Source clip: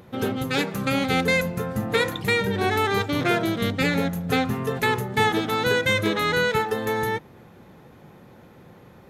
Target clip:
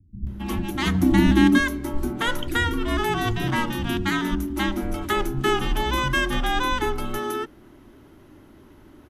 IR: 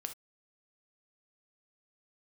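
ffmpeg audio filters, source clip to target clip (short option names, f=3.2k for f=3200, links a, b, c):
-filter_complex "[0:a]asettb=1/sr,asplit=3[a][b][c];[a]atrim=end=0.744[d];[b]atrim=start=0.74:end=1.31,asetpts=PTS-STARTPTS,afade=t=in:d=0.004:c=qsin,afade=t=out:st=0.566:d=0.004:c=qsin,equalizer=f=180:w=0.57:g=13[e];[c]atrim=start=1.306[f];[d][e]acrossfade=d=0.004:c1=hsin:c2=qsin[g];[g][f]acrossfade=d=0.004:c1=qsin:c2=hsin,afreqshift=-460,acrossover=split=170[h][i];[i]adelay=270[j];[h][j]amix=inputs=2:normalize=0"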